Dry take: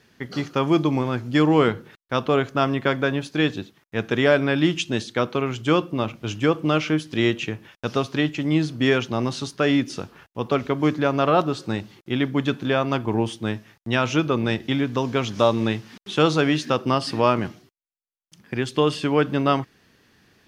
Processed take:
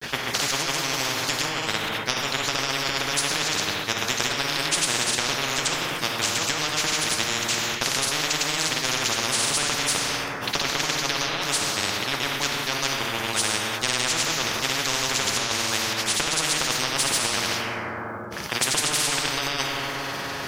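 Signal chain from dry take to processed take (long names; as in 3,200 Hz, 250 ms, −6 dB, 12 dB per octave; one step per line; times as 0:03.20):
low-shelf EQ 290 Hz −8 dB
compressor whose output falls as the input rises −23 dBFS, ratio −0.5
granular cloud, pitch spread up and down by 0 semitones
dense smooth reverb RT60 1.6 s, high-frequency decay 0.5×, DRR 3.5 dB
every bin compressed towards the loudest bin 10 to 1
level +3.5 dB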